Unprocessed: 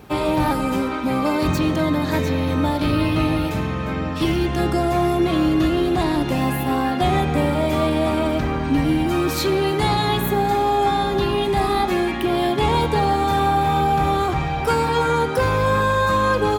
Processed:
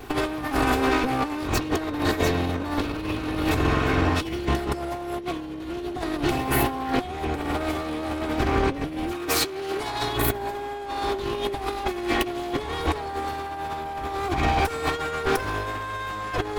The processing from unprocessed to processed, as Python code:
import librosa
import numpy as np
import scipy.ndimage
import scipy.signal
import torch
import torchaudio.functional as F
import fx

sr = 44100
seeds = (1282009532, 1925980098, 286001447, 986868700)

y = fx.lower_of_two(x, sr, delay_ms=2.7)
y = fx.over_compress(y, sr, threshold_db=-25.0, ratio=-0.5)
y = fx.low_shelf(y, sr, hz=160.0, db=-8.0, at=(9.12, 10.01))